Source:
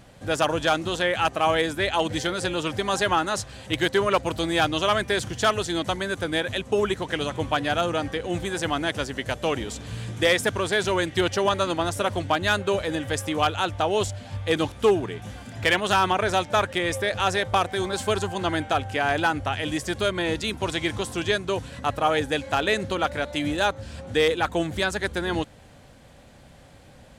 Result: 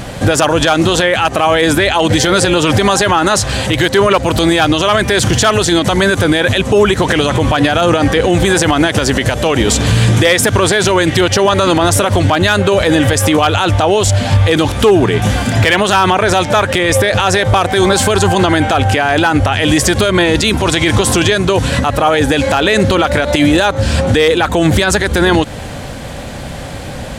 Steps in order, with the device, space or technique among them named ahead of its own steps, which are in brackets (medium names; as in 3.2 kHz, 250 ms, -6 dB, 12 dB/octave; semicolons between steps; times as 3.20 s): loud club master (compression 2:1, threshold -27 dBFS, peak gain reduction 7 dB; hard clipper -14.5 dBFS, distortion -43 dB; loudness maximiser +26 dB); trim -1 dB